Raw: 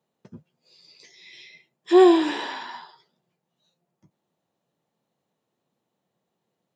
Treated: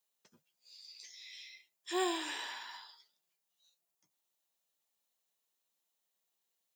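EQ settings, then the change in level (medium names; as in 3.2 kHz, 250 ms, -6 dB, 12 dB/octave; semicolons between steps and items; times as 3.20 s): differentiator; dynamic bell 4.5 kHz, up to -7 dB, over -54 dBFS, Q 1; +4.0 dB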